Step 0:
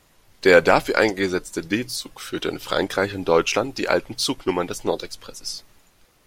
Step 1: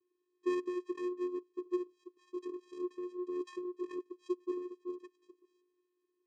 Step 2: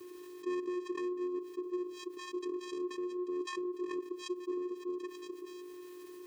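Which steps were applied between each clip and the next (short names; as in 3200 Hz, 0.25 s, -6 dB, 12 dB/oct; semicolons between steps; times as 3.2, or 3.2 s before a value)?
vocal tract filter i; vocoder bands 4, square 359 Hz; gain -6 dB
fast leveller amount 70%; gain -4.5 dB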